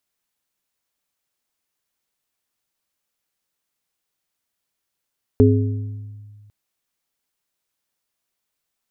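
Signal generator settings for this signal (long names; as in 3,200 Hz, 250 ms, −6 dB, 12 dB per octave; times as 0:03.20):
struck glass plate, length 1.10 s, lowest mode 104 Hz, modes 3, decay 1.90 s, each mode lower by 0 dB, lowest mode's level −11.5 dB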